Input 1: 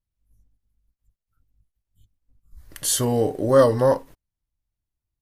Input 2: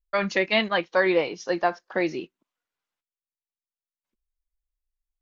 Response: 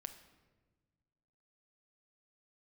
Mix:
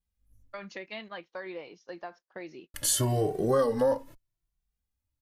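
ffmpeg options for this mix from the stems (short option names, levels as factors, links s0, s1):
-filter_complex "[0:a]asplit=2[s0][s1];[s1]adelay=2.1,afreqshift=0.84[s2];[s0][s2]amix=inputs=2:normalize=1,volume=1.26,asplit=3[s3][s4][s5];[s3]atrim=end=0.65,asetpts=PTS-STARTPTS,afade=t=out:st=0.646:d=0.004:c=hsin[s6];[s4]atrim=start=0.65:end=2.74,asetpts=PTS-STARTPTS,volume=0[s7];[s5]atrim=start=2.74,asetpts=PTS-STARTPTS,afade=t=in:d=0.004:c=hsin[s8];[s6][s7][s8]concat=n=3:v=0:a=1[s9];[1:a]agate=range=0.282:threshold=0.0158:ratio=16:detection=peak,acompressor=threshold=0.0631:ratio=2.5,adelay=400,volume=0.2[s10];[s9][s10]amix=inputs=2:normalize=0,acompressor=threshold=0.0708:ratio=4"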